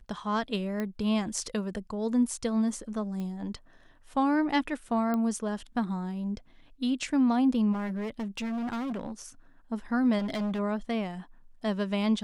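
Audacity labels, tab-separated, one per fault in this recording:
0.800000	0.800000	pop -20 dBFS
3.200000	3.200000	pop -26 dBFS
5.140000	5.140000	pop -19 dBFS
7.720000	9.110000	clipped -30 dBFS
10.180000	10.600000	clipped -28 dBFS

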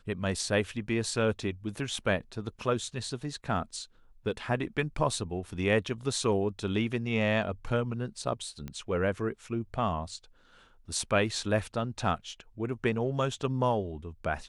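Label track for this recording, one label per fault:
8.680000	8.680000	pop -25 dBFS

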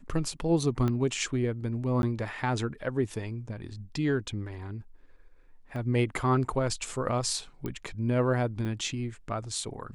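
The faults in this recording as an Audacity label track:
0.880000	0.880000	pop -18 dBFS
2.020000	2.030000	dropout 11 ms
5.760000	5.760000	dropout 2.5 ms
7.660000	7.660000	pop -21 dBFS
8.650000	8.650000	dropout 3.5 ms

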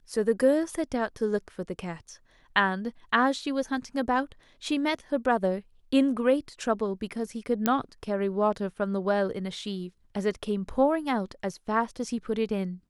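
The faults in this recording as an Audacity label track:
7.660000	7.660000	pop -9 dBFS

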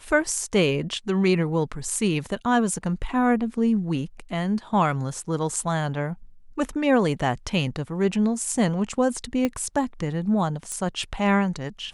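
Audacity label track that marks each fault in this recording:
9.450000	9.450000	pop -11 dBFS
10.720000	10.720000	pop -18 dBFS

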